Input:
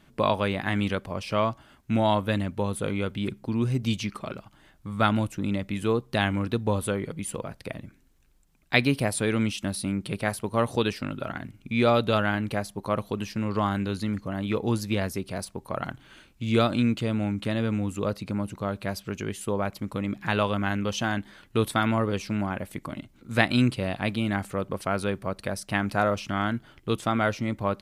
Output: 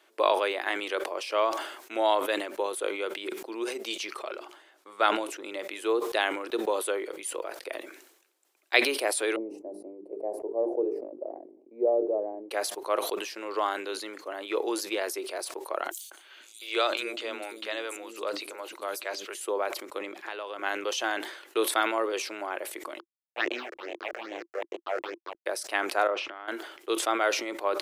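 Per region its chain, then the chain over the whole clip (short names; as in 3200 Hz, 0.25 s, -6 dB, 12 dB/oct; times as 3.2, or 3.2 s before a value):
4.21–5.45 high shelf 11000 Hz -9 dB + notches 60/120/180/240/300/360/420 Hz
9.36–12.51 inverse Chebyshev low-pass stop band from 1300 Hz + notches 50/100/150/200/250/300/350/400/450 Hz
15.91–19.35 tilt shelf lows -3.5 dB, about 1400 Hz + three bands offset in time highs, mids, lows 0.2/0.49 s, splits 310/6000 Hz
19.98–20.59 high shelf 9300 Hz -6 dB + compressor 10:1, threshold -30 dBFS
22.99–25.46 level-crossing sampler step -24 dBFS + phaser stages 6, 2.4 Hz, lowest notch 240–1400 Hz + air absorption 210 m
26.07–26.48 LPF 2500 Hz + compressor 10:1, threshold -34 dBFS
whole clip: Chebyshev high-pass 340 Hz, order 5; sustainer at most 68 dB/s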